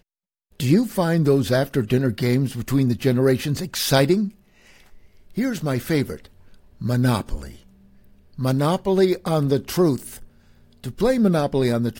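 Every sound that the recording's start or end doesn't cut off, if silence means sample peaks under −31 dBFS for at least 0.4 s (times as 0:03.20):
0:00.60–0:04.29
0:05.37–0:06.25
0:06.81–0:07.50
0:08.38–0:10.23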